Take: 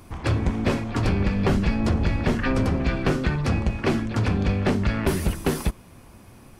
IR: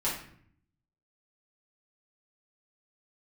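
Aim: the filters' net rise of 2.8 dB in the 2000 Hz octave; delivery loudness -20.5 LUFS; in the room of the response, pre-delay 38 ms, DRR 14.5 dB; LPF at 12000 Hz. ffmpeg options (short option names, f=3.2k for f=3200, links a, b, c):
-filter_complex "[0:a]lowpass=12k,equalizer=f=2k:t=o:g=3.5,asplit=2[a][b];[1:a]atrim=start_sample=2205,adelay=38[c];[b][c]afir=irnorm=-1:irlink=0,volume=-22dB[d];[a][d]amix=inputs=2:normalize=0,volume=3dB"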